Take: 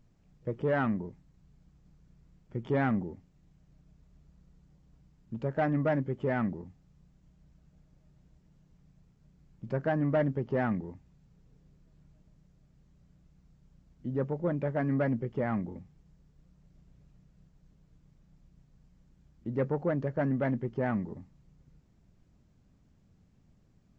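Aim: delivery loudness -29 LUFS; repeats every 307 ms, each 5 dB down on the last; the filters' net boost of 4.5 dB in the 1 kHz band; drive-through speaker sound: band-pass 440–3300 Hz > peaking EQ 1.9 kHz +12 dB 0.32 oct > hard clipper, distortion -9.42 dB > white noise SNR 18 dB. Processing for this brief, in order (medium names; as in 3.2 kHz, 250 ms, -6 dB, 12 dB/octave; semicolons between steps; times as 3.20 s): band-pass 440–3300 Hz; peaking EQ 1 kHz +6.5 dB; peaking EQ 1.9 kHz +12 dB 0.32 oct; feedback delay 307 ms, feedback 56%, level -5 dB; hard clipper -27 dBFS; white noise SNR 18 dB; trim +6 dB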